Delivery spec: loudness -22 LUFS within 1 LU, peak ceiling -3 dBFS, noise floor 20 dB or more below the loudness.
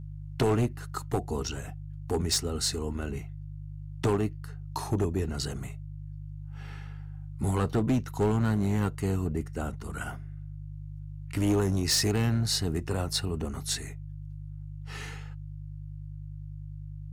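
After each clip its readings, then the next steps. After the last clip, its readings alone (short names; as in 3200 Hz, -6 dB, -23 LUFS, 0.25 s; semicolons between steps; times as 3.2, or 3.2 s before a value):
clipped 1.3%; flat tops at -20.0 dBFS; hum 50 Hz; harmonics up to 150 Hz; hum level -38 dBFS; loudness -30.0 LUFS; peak -20.0 dBFS; loudness target -22.0 LUFS
-> clip repair -20 dBFS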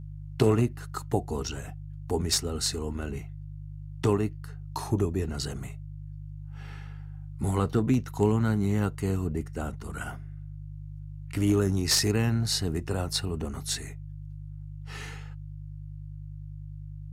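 clipped 0.0%; hum 50 Hz; harmonics up to 150 Hz; hum level -37 dBFS
-> de-hum 50 Hz, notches 3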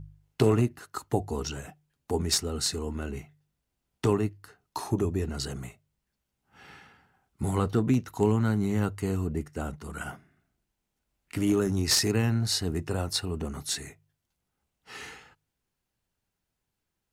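hum none; loudness -28.5 LUFS; peak -11.0 dBFS; loudness target -22.0 LUFS
-> gain +6.5 dB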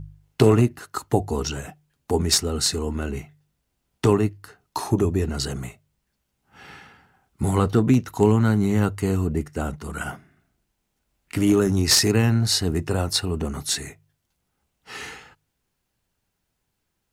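loudness -22.0 LUFS; peak -4.5 dBFS; noise floor -77 dBFS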